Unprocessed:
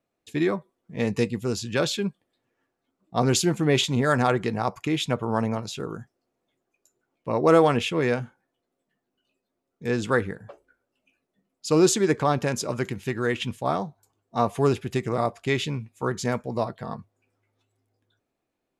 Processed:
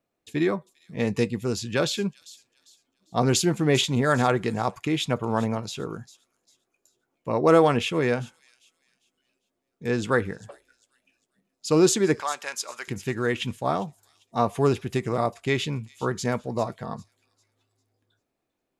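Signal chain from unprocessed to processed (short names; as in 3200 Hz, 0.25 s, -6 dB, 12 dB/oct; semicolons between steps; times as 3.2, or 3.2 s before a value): 12.2–12.88 HPF 1100 Hz 12 dB/oct; thin delay 0.399 s, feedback 32%, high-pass 5500 Hz, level -11.5 dB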